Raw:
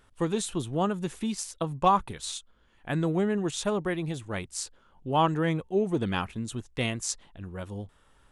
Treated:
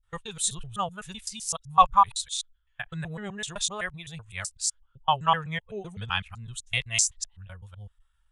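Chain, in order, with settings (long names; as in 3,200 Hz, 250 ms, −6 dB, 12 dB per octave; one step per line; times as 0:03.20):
reversed piece by piece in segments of 127 ms
guitar amp tone stack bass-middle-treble 10-0-10
every bin expanded away from the loudest bin 1.5 to 1
level +9 dB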